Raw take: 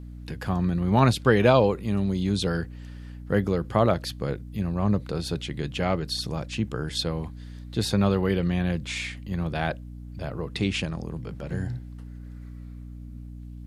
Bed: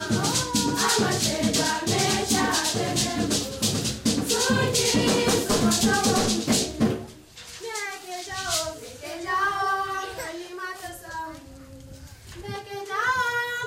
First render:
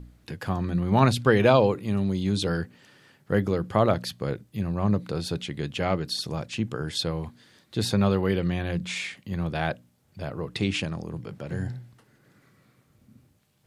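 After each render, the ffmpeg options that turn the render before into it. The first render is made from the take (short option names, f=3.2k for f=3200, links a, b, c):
-af "bandreject=f=60:t=h:w=4,bandreject=f=120:t=h:w=4,bandreject=f=180:t=h:w=4,bandreject=f=240:t=h:w=4,bandreject=f=300:t=h:w=4"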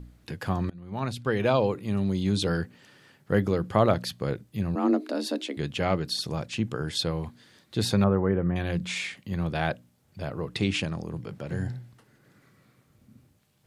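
-filter_complex "[0:a]asettb=1/sr,asplit=3[a][b][c];[a]atrim=end=4.754[d];[b]atrim=start=4.75:end=5.57,asetpts=PTS-STARTPTS,afade=t=in:d=0.004:c=qsin,afade=t=out:st=0.816:d=0.004:c=qsin,afreqshift=130[e];[c]atrim=start=5.566[f];[d][e]acrossfade=d=0.004:c1=hsin:c2=qsin[g];[g][f]acrossfade=d=0.004:c1=qsin:c2=hsin,asettb=1/sr,asplit=3[h][i][j];[h]atrim=end=8.044[k];[i]atrim=start=8.04:end=8.56,asetpts=PTS-STARTPTS,afade=t=in:d=0.004:c=qsin,afade=t=out:st=0.516:d=0.004:c=qsin,lowpass=f=1.6k:w=0.5412,lowpass=f=1.6k:w=1.3066[l];[j]atrim=start=8.556[m];[k][l]acrossfade=d=0.004:c1=hsin:c2=qsin[n];[n][m]acrossfade=d=0.004:c1=qsin:c2=hsin,asplit=2[o][p];[o]atrim=end=0.7,asetpts=PTS-STARTPTS,afade=t=out:st=0.696:d=0.004:c=hsin:silence=0.0630957[q];[p]atrim=start=0.7,asetpts=PTS-STARTPTS,afade=t=in:d=1.5:silence=0.0630957[r];[q][r]concat=n=2:v=0:a=1"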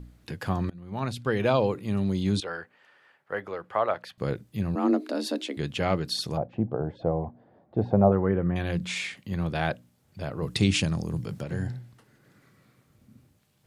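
-filter_complex "[0:a]asettb=1/sr,asplit=3[a][b][c];[a]atrim=end=2.404[d];[b]atrim=start=2.4:end=4.18,asetpts=PTS-STARTPTS,afade=t=in:d=0.004:c=qsin,afade=t=out:st=1.776:d=0.004:c=qsin,acrossover=split=520 2600:gain=0.0794 1 0.158[e][f][g];[e][f][g]amix=inputs=3:normalize=0[h];[c]atrim=start=4.176[i];[d][h]acrossfade=d=0.004:c1=hsin:c2=qsin[j];[j][i]acrossfade=d=0.004:c1=qsin:c2=hsin,asettb=1/sr,asplit=3[k][l][m];[k]atrim=end=6.374[n];[l]atrim=start=6.37:end=8.12,asetpts=PTS-STARTPTS,afade=t=in:d=0.004:c=qsin,afade=t=out:st=1.746:d=0.004:c=qsin,lowpass=f=710:t=q:w=3.9[o];[m]atrim=start=8.116[p];[n][o]acrossfade=d=0.004:c1=hsin:c2=qsin[q];[q][p]acrossfade=d=0.004:c1=qsin:c2=hsin,asettb=1/sr,asplit=3[r][s][t];[r]atrim=end=10.424[u];[s]atrim=start=10.42:end=11.44,asetpts=PTS-STARTPTS,afade=t=in:d=0.004:c=qsin,afade=t=out:st=1.016:d=0.004:c=qsin,bass=f=250:g=6,treble=f=4k:g=9[v];[t]atrim=start=11.436[w];[u][v]acrossfade=d=0.004:c1=hsin:c2=qsin[x];[x][w]acrossfade=d=0.004:c1=qsin:c2=hsin"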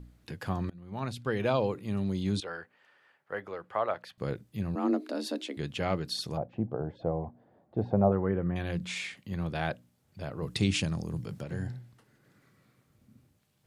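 -af "volume=-4.5dB"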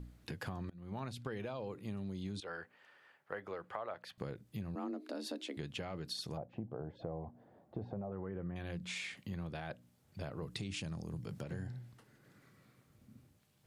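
-af "alimiter=limit=-21.5dB:level=0:latency=1:release=19,acompressor=threshold=-39dB:ratio=6"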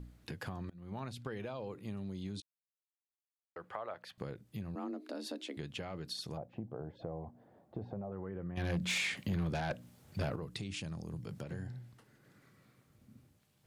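-filter_complex "[0:a]asettb=1/sr,asplit=3[a][b][c];[a]atrim=end=8.574[d];[b]atrim=start=8.57:end=10.36,asetpts=PTS-STARTPTS,afade=t=in:d=0.004:c=qsin,afade=t=out:st=1.786:d=0.004:c=qsin,aeval=exprs='0.0376*sin(PI/2*2*val(0)/0.0376)':c=same[e];[c]atrim=start=10.356[f];[d][e]acrossfade=d=0.004:c1=hsin:c2=qsin[g];[g][f]acrossfade=d=0.004:c1=qsin:c2=hsin,asplit=3[h][i][j];[h]atrim=end=2.42,asetpts=PTS-STARTPTS,afade=t=out:st=2.416:d=0.004:c=hsin[k];[i]atrim=start=2.42:end=3.56,asetpts=PTS-STARTPTS,volume=0[l];[j]atrim=start=3.56,asetpts=PTS-STARTPTS,afade=t=in:d=0.004:c=hsin[m];[k][l][m]concat=n=3:v=0:a=1"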